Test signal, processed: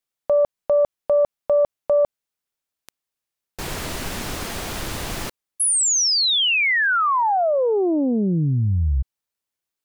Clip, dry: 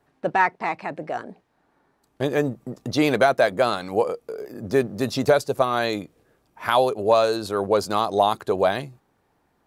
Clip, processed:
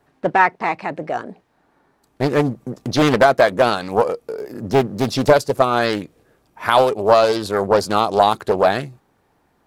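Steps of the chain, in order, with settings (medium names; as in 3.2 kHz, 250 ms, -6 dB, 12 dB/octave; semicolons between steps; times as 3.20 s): loudspeaker Doppler distortion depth 0.58 ms; trim +5 dB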